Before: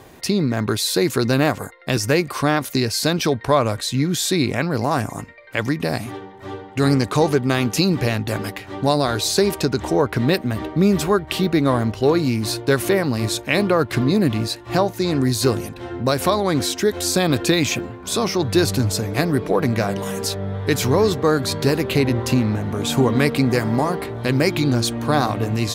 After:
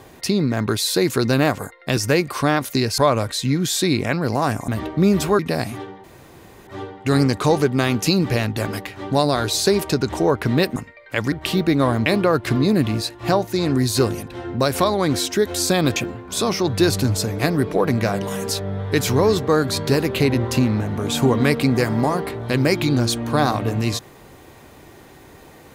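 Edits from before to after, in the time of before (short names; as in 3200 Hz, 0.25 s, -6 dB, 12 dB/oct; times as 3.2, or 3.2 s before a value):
2.98–3.47 cut
5.17–5.73 swap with 10.47–11.18
6.38 insert room tone 0.63 s
11.92–13.52 cut
17.42–17.71 cut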